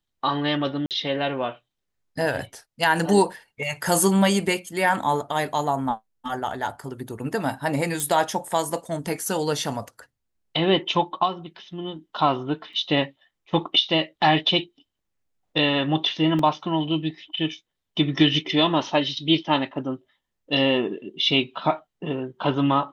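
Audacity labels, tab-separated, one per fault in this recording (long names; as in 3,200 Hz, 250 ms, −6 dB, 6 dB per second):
0.860000	0.910000	drop-out 48 ms
8.000000	8.000000	click
12.730000	12.730000	drop-out 4.5 ms
16.390000	16.390000	drop-out 2.8 ms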